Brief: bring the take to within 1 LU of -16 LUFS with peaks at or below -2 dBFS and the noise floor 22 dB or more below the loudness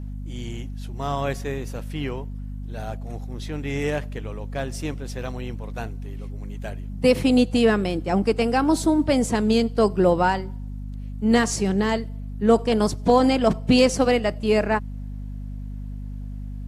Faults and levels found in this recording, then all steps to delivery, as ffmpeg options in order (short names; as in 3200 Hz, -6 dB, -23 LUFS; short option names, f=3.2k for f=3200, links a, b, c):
hum 50 Hz; harmonics up to 250 Hz; hum level -30 dBFS; loudness -22.5 LUFS; peak -6.0 dBFS; loudness target -16.0 LUFS
-> -af "bandreject=f=50:t=h:w=4,bandreject=f=100:t=h:w=4,bandreject=f=150:t=h:w=4,bandreject=f=200:t=h:w=4,bandreject=f=250:t=h:w=4"
-af "volume=6.5dB,alimiter=limit=-2dB:level=0:latency=1"